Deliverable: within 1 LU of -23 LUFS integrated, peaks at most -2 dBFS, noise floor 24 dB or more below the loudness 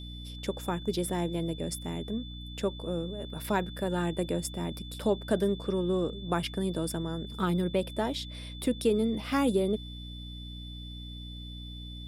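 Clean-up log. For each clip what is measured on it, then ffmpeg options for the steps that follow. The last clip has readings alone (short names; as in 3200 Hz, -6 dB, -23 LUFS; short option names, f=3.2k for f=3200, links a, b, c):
hum 60 Hz; harmonics up to 300 Hz; hum level -40 dBFS; steady tone 3500 Hz; tone level -46 dBFS; loudness -31.5 LUFS; peak -13.0 dBFS; loudness target -23.0 LUFS
-> -af "bandreject=f=60:t=h:w=4,bandreject=f=120:t=h:w=4,bandreject=f=180:t=h:w=4,bandreject=f=240:t=h:w=4,bandreject=f=300:t=h:w=4"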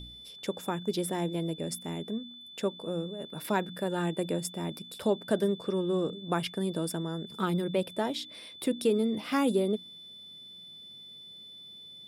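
hum none; steady tone 3500 Hz; tone level -46 dBFS
-> -af "bandreject=f=3.5k:w=30"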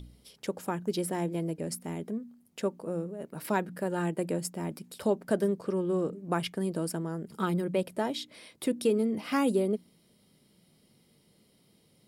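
steady tone none; loudness -32.0 LUFS; peak -13.5 dBFS; loudness target -23.0 LUFS
-> -af "volume=9dB"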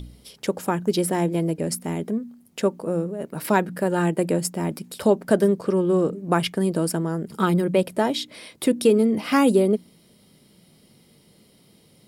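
loudness -23.0 LUFS; peak -4.5 dBFS; noise floor -57 dBFS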